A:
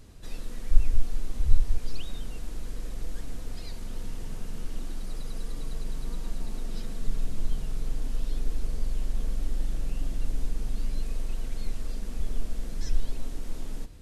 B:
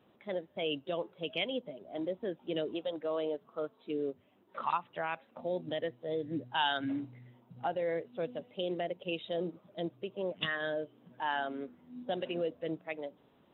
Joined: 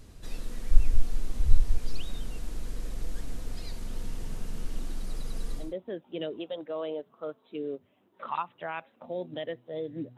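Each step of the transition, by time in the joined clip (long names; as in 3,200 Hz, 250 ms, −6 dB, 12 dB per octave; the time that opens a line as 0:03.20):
A
0:05.64: continue with B from 0:01.99, crossfade 0.20 s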